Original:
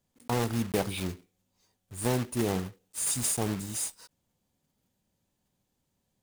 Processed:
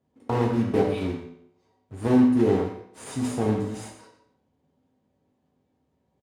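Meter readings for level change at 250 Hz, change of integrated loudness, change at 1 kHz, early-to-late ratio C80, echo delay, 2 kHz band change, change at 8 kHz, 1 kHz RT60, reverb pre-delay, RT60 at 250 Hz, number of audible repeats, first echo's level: +10.5 dB, +6.5 dB, +5.0 dB, 7.0 dB, 120 ms, +0.5 dB, -13.5 dB, 0.65 s, 5 ms, 0.70 s, 1, -11.5 dB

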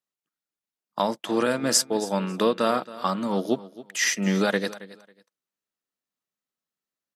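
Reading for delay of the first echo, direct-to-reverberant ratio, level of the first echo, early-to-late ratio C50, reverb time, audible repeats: 273 ms, no reverb, -17.5 dB, no reverb, no reverb, 2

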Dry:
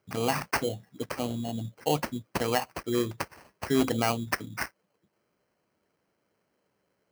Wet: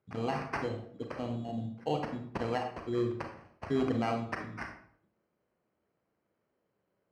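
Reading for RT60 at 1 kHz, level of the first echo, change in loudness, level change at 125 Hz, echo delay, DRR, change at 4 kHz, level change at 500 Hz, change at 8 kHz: 0.55 s, no echo, -5.0 dB, -3.0 dB, no echo, 3.5 dB, -12.0 dB, -4.0 dB, under -20 dB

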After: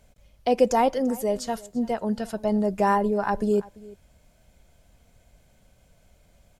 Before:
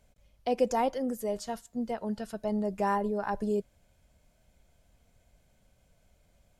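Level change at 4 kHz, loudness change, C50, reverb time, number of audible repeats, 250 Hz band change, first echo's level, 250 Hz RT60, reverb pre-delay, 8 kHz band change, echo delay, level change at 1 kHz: +7.0 dB, +7.0 dB, no reverb, no reverb, 1, +7.0 dB, -21.5 dB, no reverb, no reverb, +7.0 dB, 341 ms, +7.0 dB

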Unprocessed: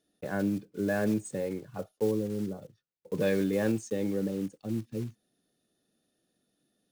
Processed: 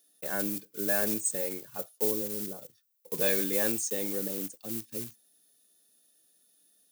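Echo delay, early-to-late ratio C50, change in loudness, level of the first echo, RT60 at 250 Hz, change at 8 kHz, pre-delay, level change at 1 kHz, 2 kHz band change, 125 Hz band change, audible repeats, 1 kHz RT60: no echo, no reverb, +2.0 dB, no echo, no reverb, +14.0 dB, no reverb, -0.5 dB, +2.0 dB, -10.0 dB, no echo, no reverb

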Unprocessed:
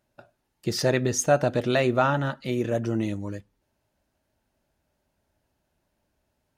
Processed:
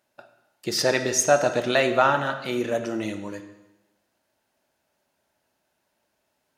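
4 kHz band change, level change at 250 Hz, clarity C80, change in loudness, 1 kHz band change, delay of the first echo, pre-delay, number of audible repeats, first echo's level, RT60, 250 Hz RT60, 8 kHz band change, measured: +5.0 dB, -2.0 dB, 11.5 dB, +2.0 dB, +4.0 dB, no echo, 25 ms, no echo, no echo, 1.0 s, 1.0 s, +5.0 dB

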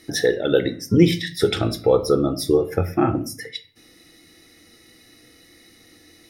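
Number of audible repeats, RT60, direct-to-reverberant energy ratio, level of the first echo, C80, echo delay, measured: no echo, 0.45 s, 8.5 dB, no echo, 19.5 dB, no echo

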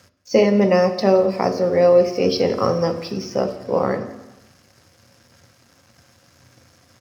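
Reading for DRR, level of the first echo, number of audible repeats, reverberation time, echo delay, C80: 7.0 dB, -20.0 dB, 1, 1.0 s, 172 ms, 13.0 dB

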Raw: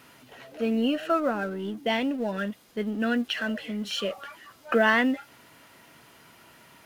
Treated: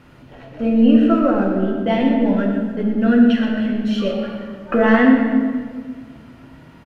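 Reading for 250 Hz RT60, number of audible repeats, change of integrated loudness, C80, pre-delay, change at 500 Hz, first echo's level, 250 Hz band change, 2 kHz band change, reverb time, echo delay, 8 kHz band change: 2.2 s, 1, +10.5 dB, 3.5 dB, 4 ms, +8.5 dB, -10.0 dB, +14.0 dB, +3.0 dB, 1.7 s, 121 ms, no reading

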